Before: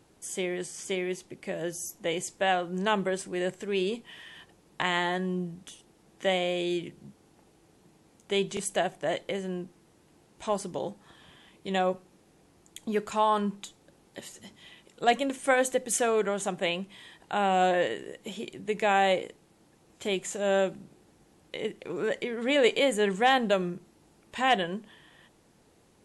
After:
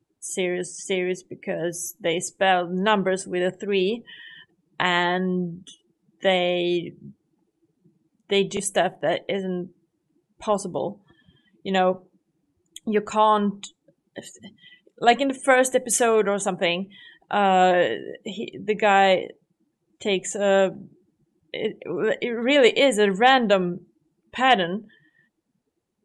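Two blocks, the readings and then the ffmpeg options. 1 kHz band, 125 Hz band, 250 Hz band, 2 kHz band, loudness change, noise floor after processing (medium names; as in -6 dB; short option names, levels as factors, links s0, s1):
+6.5 dB, +6.5 dB, +6.5 dB, +6.5 dB, +6.5 dB, -76 dBFS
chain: -af "afftdn=nr=26:nf=-46,volume=2.11"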